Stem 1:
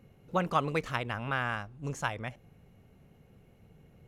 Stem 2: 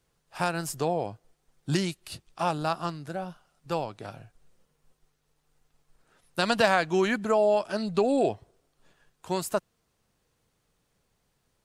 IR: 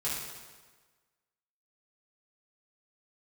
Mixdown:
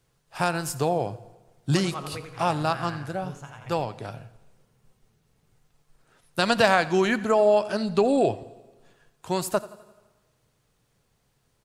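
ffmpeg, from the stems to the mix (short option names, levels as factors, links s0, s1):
-filter_complex "[0:a]adelay=1400,volume=0.335,asplit=3[s0][s1][s2];[s1]volume=0.224[s3];[s2]volume=0.501[s4];[1:a]volume=1.33,asplit=4[s5][s6][s7][s8];[s6]volume=0.075[s9];[s7]volume=0.106[s10];[s8]apad=whole_len=241562[s11];[s0][s11]sidechaingate=range=0.0224:threshold=0.00316:ratio=16:detection=peak[s12];[2:a]atrim=start_sample=2205[s13];[s3][s9]amix=inputs=2:normalize=0[s14];[s14][s13]afir=irnorm=-1:irlink=0[s15];[s4][s10]amix=inputs=2:normalize=0,aecho=0:1:86|172|258|344|430|516|602:1|0.51|0.26|0.133|0.0677|0.0345|0.0176[s16];[s12][s5][s15][s16]amix=inputs=4:normalize=0,equalizer=f=120:w=5.3:g=7.5"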